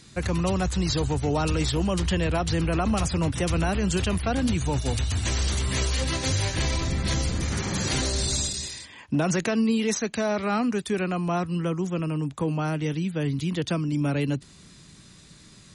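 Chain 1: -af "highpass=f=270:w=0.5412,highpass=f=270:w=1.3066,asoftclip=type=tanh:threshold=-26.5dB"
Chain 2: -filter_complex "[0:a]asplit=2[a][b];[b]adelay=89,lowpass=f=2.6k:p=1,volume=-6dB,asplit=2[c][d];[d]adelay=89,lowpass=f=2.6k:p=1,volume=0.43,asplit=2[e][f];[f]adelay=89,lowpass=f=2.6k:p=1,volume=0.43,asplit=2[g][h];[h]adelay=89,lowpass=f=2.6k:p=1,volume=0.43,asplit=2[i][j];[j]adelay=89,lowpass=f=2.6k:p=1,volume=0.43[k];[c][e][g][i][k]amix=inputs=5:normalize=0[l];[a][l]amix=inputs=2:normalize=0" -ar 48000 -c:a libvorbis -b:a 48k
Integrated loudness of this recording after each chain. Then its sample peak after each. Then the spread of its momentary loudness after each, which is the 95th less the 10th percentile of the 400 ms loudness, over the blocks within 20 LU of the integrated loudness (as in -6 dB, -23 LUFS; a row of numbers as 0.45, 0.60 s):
-32.0, -25.0 LUFS; -26.5, -12.0 dBFS; 5, 4 LU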